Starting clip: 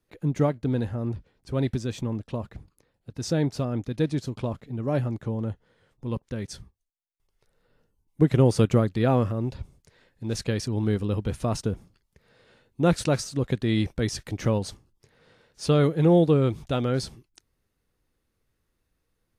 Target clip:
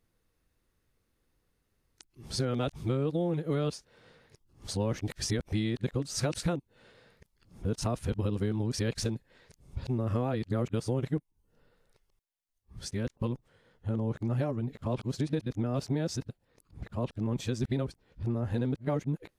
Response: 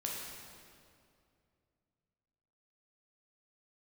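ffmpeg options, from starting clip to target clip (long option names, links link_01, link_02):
-af "areverse,acompressor=threshold=-26dB:ratio=16"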